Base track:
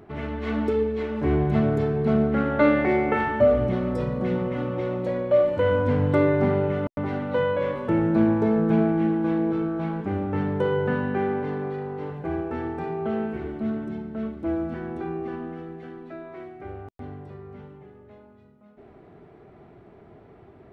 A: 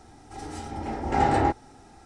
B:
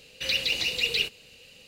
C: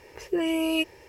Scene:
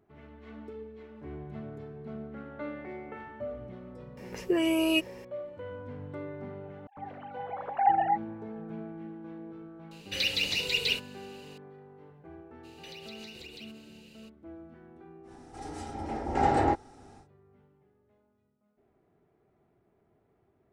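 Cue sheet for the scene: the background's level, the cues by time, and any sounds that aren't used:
base track -20 dB
4.17 add C -0.5 dB
6.65 add A -3.5 dB + sine-wave speech
9.91 add B -2.5 dB
12.63 add B -6.5 dB, fades 0.02 s + compressor 10:1, threshold -38 dBFS
15.23 add A -5 dB, fades 0.10 s + bell 510 Hz +3.5 dB 1.7 oct

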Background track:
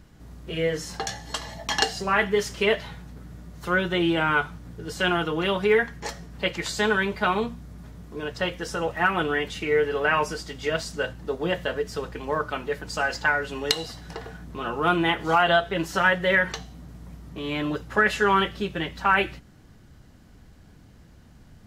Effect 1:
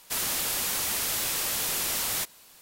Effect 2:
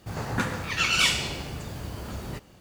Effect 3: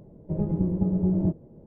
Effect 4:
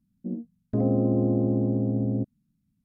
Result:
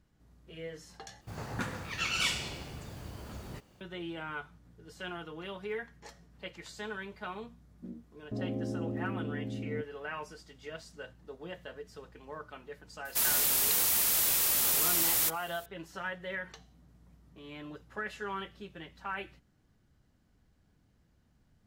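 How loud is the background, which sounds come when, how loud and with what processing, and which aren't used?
background track -17.5 dB
1.21 replace with 2 -8.5 dB
7.58 add 4 -12.5 dB
13.05 add 1 -3.5 dB + high shelf 11000 Hz +11 dB
not used: 3

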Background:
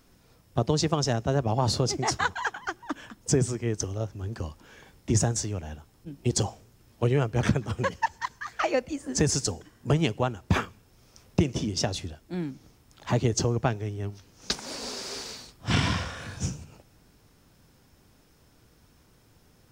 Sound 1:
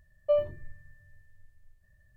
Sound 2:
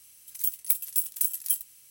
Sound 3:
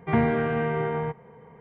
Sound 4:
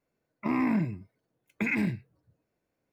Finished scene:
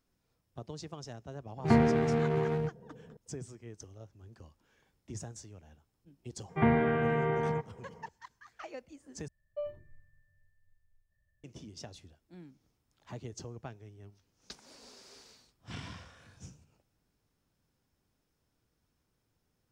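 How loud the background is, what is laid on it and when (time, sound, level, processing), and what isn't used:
background -19 dB
1.57 add 3 -1 dB + Wiener smoothing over 41 samples
6.49 add 3 -3.5 dB + mismatched tape noise reduction decoder only
9.28 replace with 1 -13 dB
not used: 2, 4

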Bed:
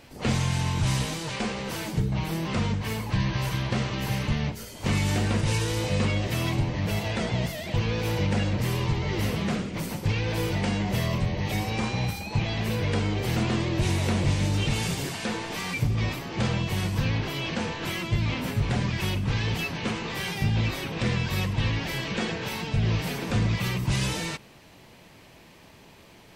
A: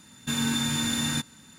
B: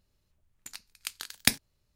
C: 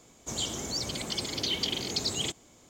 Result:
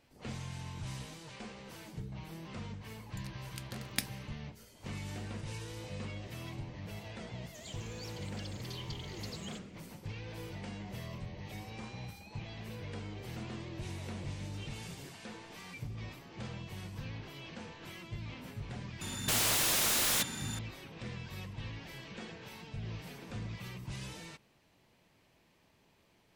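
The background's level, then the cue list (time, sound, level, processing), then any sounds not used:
bed -17 dB
2.51 add B -11.5 dB
7.27 add C -17.5 dB
19.01 add A -12.5 dB + sine folder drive 19 dB, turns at -14 dBFS

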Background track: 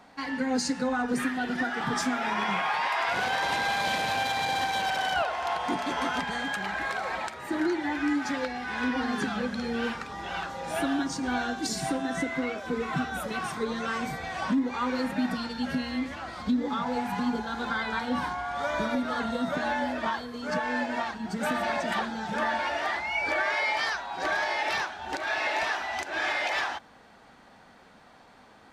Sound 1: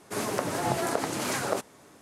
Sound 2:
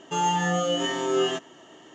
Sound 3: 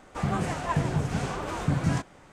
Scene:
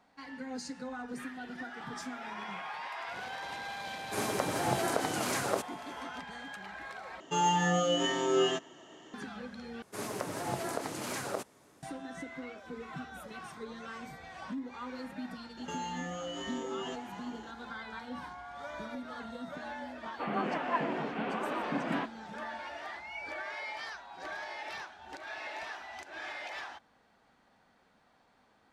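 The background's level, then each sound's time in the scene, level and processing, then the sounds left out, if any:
background track -13 dB
4.01 add 1 -3 dB
7.2 replace with 2 -3.5 dB
9.82 replace with 1 -7.5 dB
15.57 add 2 -4 dB + compressor 4:1, threshold -34 dBFS
20.04 add 3 -1.5 dB + elliptic band-pass 230–3000 Hz

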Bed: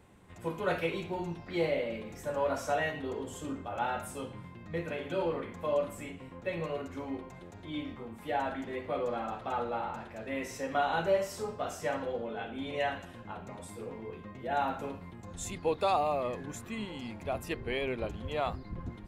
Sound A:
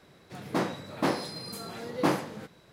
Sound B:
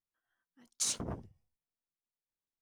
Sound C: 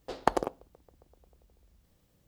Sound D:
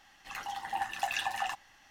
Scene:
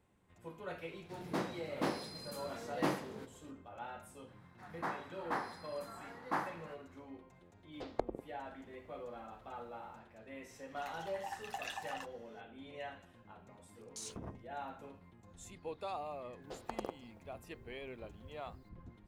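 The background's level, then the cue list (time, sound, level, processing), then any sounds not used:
bed -13.5 dB
0.79 add A -8.5 dB
4.28 add A -17.5 dB + band shelf 1200 Hz +12.5 dB
7.72 add C -7 dB + treble ducked by the level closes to 340 Hz, closed at -26.5 dBFS
10.51 add D -10.5 dB
13.16 add B -4.5 dB + limiter -32 dBFS
16.42 add C -8 dB + limiter -16 dBFS

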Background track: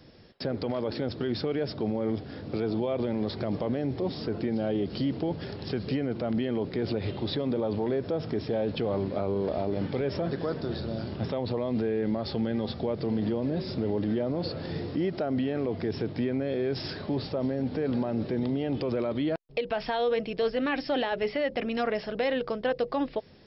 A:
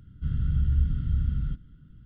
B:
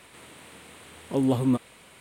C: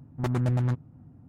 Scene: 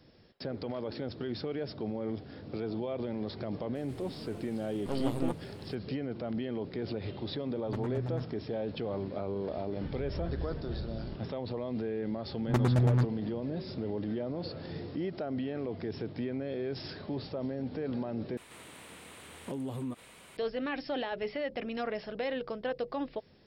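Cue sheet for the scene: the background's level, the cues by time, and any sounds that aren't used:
background track -6.5 dB
3.75 add B -6 dB + half-wave rectifier
7.49 add C -10.5 dB + high shelf 6200 Hz -10.5 dB
9.61 add A -14.5 dB
12.3 add C
18.37 replace with B -2 dB + compressor, threshold -32 dBFS

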